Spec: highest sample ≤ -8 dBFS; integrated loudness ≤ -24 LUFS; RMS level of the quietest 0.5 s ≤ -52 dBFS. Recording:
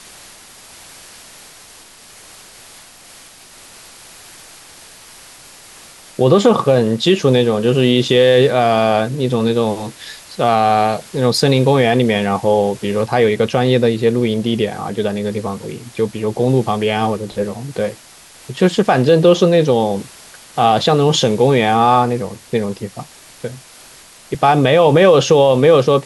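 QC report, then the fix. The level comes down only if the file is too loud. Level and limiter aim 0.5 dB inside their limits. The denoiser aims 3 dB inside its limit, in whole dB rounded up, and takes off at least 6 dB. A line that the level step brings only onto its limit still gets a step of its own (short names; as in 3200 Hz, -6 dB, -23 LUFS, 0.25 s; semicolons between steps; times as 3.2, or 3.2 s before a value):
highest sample -1.5 dBFS: fail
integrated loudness -14.5 LUFS: fail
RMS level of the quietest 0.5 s -42 dBFS: fail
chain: denoiser 6 dB, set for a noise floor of -42 dBFS; gain -10 dB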